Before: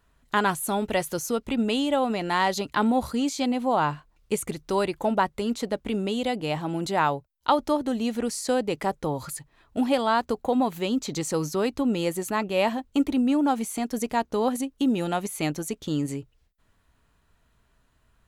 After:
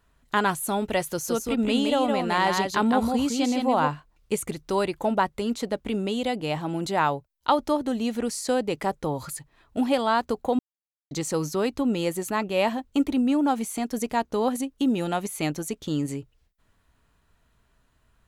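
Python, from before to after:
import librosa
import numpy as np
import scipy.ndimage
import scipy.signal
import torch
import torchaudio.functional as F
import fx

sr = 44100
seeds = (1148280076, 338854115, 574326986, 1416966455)

y = fx.echo_single(x, sr, ms=164, db=-4.0, at=(1.23, 3.87), fade=0.02)
y = fx.edit(y, sr, fx.silence(start_s=10.59, length_s=0.52), tone=tone)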